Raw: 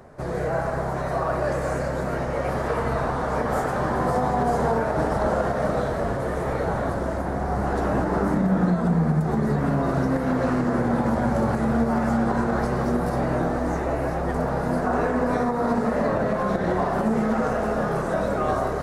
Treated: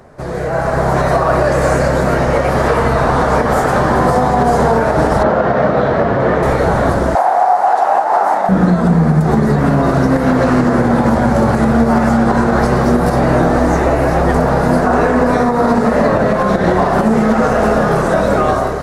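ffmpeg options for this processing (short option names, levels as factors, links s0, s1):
-filter_complex "[0:a]asettb=1/sr,asplit=3[s0][s1][s2];[s0]atrim=end=5.234[s3];[s1]atrim=start=5.23:end=6.43,asetpts=PTS-STARTPTS,afade=t=in:d=0.004:c=qsin,afade=t=out:st=1.196:d=0.004:c=qsin,highpass=100,lowpass=3100[s4];[s2]atrim=start=6.426[s5];[s3][s4]acrossfade=d=0.004:c1=hsin:c2=qsin[s6];[s6][s5]acrossfade=d=0.004:c1=qsin:c2=hsin,asettb=1/sr,asplit=3[s7][s8][s9];[s7]atrim=end=7.154[s10];[s8]atrim=start=7.15:end=8.49,asetpts=PTS-STARTPTS,afade=t=in:d=0.004:c=qsin,afade=t=out:st=1.336:d=0.004:c=qsin,highpass=f=770:t=q:w=5.7[s11];[s9]atrim=start=8.486[s12];[s10][s11]acrossfade=d=0.004:c1=hsin:c2=qsin[s13];[s13][s12]acrossfade=d=0.004:c1=qsin:c2=hsin,dynaudnorm=f=510:g=3:m=3.76,equalizer=f=4300:w=0.6:g=2.5,alimiter=limit=0.398:level=0:latency=1:release=270,volume=1.78"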